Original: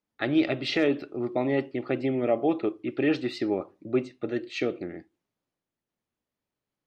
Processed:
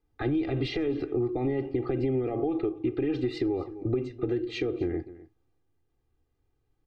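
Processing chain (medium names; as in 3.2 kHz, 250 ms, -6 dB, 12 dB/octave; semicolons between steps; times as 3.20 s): peak limiter -24 dBFS, peak gain reduction 11 dB; bass shelf 120 Hz +10 dB; comb 2.5 ms, depth 82%; delay 255 ms -20.5 dB; compression, threshold -31 dBFS, peak gain reduction 8.5 dB; tilt EQ -2.5 dB/octave; trim +2.5 dB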